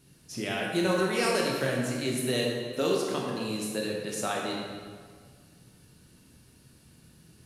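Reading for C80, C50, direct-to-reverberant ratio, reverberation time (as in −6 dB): 2.5 dB, 0.5 dB, −2.5 dB, 1.8 s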